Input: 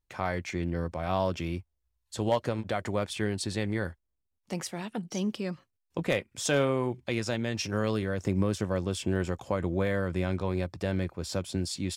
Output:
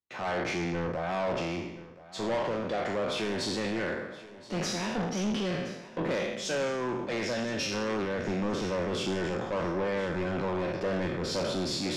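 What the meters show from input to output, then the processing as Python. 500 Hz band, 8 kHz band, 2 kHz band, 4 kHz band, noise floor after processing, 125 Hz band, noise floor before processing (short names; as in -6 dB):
+0.5 dB, -1.5 dB, +1.5 dB, +3.0 dB, -48 dBFS, -5.5 dB, -80 dBFS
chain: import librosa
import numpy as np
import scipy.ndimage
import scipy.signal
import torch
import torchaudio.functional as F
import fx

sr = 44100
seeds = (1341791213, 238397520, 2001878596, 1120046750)

p1 = fx.spec_trails(x, sr, decay_s=0.96)
p2 = scipy.signal.sosfilt(scipy.signal.butter(2, 160.0, 'highpass', fs=sr, output='sos'), p1)
p3 = fx.peak_eq(p2, sr, hz=8700.0, db=-10.0, octaves=0.51)
p4 = fx.rider(p3, sr, range_db=4, speed_s=0.5)
p5 = 10.0 ** (-31.5 / 20.0) * np.tanh(p4 / 10.0 ** (-31.5 / 20.0))
p6 = fx.air_absorb(p5, sr, metres=64.0)
p7 = p6 + fx.echo_feedback(p6, sr, ms=1023, feedback_pct=44, wet_db=-13.5, dry=0)
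p8 = fx.band_widen(p7, sr, depth_pct=40)
y = p8 * librosa.db_to_amplitude(5.0)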